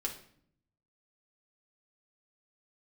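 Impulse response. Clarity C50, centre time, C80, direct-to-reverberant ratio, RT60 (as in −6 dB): 9.5 dB, 16 ms, 13.5 dB, −1.0 dB, 0.60 s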